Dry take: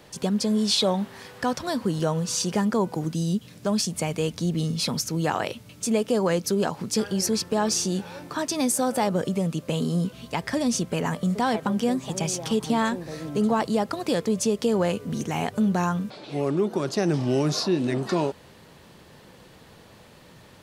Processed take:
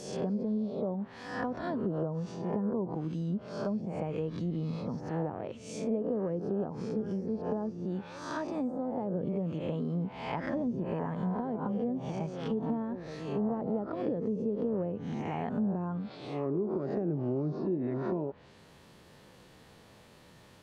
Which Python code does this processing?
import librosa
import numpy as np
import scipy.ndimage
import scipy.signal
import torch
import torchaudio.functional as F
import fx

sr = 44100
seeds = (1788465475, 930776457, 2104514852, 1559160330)

y = fx.spec_swells(x, sr, rise_s=0.8)
y = fx.env_lowpass_down(y, sr, base_hz=500.0, full_db=-18.0)
y = y * librosa.db_to_amplitude(-8.5)